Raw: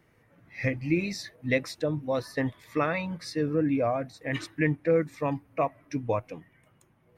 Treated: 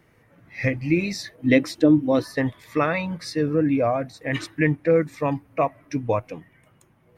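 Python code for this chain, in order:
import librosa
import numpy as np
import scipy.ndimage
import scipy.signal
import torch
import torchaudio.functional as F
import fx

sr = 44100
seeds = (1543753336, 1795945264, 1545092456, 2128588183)

y = fx.small_body(x, sr, hz=(300.0, 3100.0), ring_ms=45, db=14, at=(1.38, 2.24))
y = y * librosa.db_to_amplitude(5.0)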